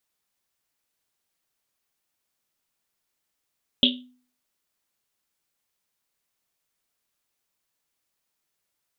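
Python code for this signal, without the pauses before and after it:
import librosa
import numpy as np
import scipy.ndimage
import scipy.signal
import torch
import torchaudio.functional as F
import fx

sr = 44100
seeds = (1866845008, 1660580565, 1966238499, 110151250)

y = fx.risset_drum(sr, seeds[0], length_s=1.1, hz=250.0, decay_s=0.47, noise_hz=3300.0, noise_width_hz=890.0, noise_pct=55)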